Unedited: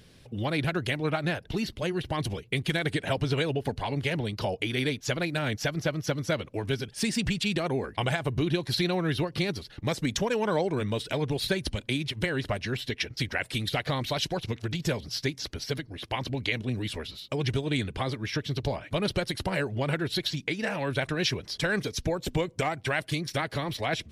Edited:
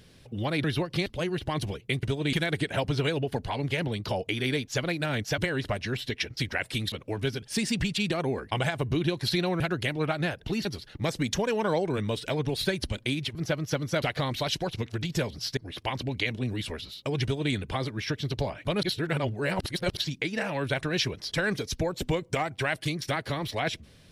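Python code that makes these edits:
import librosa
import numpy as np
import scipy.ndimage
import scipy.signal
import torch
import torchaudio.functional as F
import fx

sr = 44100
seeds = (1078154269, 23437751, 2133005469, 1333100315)

y = fx.edit(x, sr, fx.swap(start_s=0.64, length_s=1.05, other_s=9.06, other_length_s=0.42),
    fx.swap(start_s=5.71, length_s=0.67, other_s=12.18, other_length_s=1.54),
    fx.cut(start_s=15.27, length_s=0.56),
    fx.duplicate(start_s=17.49, length_s=0.3, to_s=2.66),
    fx.reverse_span(start_s=19.09, length_s=1.14), tone=tone)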